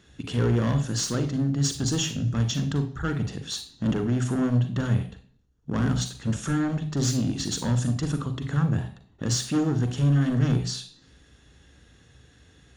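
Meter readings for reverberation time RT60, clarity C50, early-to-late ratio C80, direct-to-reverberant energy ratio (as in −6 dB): 0.55 s, 11.0 dB, 15.5 dB, 8.0 dB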